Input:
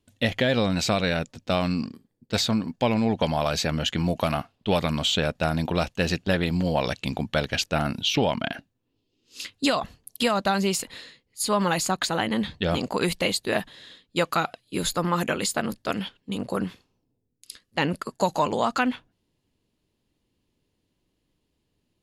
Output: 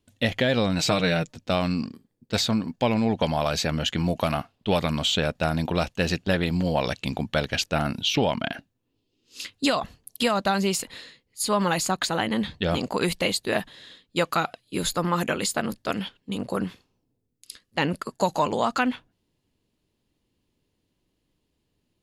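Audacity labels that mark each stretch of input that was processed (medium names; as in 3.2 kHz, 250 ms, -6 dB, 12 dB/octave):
0.790000	1.340000	comb 6.5 ms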